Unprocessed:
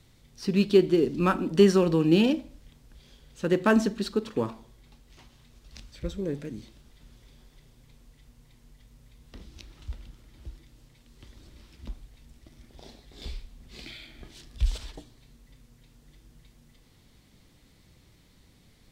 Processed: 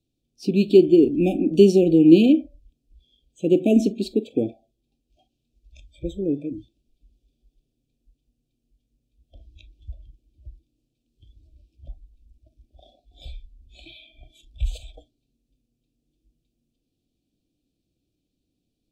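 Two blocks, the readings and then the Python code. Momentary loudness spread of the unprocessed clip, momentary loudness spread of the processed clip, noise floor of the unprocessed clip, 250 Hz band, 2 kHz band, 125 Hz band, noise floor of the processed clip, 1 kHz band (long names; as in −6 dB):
22 LU, 18 LU, −60 dBFS, +7.0 dB, −6.0 dB, +2.5 dB, −78 dBFS, can't be measured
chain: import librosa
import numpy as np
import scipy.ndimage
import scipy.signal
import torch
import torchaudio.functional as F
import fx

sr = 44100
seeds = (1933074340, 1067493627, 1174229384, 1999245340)

y = fx.noise_reduce_blind(x, sr, reduce_db=21)
y = fx.brickwall_bandstop(y, sr, low_hz=790.0, high_hz=2300.0)
y = fx.peak_eq(y, sr, hz=300.0, db=12.0, octaves=0.7)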